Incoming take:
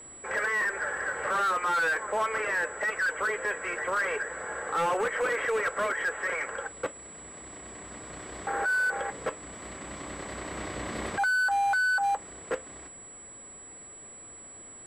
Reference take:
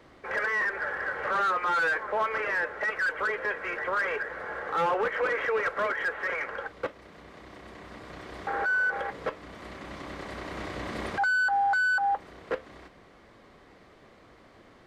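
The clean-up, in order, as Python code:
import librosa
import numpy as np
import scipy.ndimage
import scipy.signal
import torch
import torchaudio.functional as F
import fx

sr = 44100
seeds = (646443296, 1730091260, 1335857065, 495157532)

y = fx.fix_declip(x, sr, threshold_db=-23.0)
y = fx.notch(y, sr, hz=7800.0, q=30.0)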